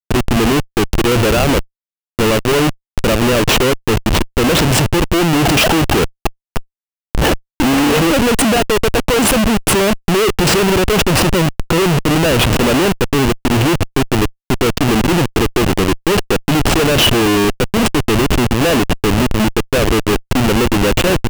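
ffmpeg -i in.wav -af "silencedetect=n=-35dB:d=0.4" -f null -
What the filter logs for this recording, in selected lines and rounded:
silence_start: 1.64
silence_end: 2.19 | silence_duration: 0.55
silence_start: 6.62
silence_end: 7.15 | silence_duration: 0.53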